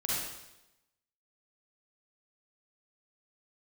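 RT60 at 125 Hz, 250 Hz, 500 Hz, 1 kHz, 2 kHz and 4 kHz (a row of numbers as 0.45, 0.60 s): 0.90, 0.95, 0.95, 0.90, 0.90, 0.90 s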